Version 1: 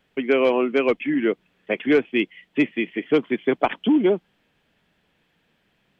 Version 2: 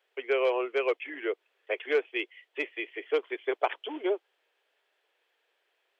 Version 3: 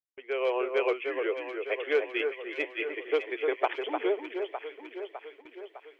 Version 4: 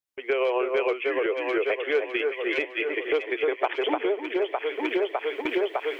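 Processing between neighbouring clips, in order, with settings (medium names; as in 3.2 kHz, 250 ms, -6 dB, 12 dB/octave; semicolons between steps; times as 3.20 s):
steep high-pass 380 Hz 48 dB/octave; trim -6.5 dB
fade-in on the opening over 0.59 s; echo whose repeats swap between lows and highs 303 ms, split 1.9 kHz, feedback 74%, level -5 dB; gate with hold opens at -41 dBFS
recorder AGC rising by 41 dB/s; trim +1.5 dB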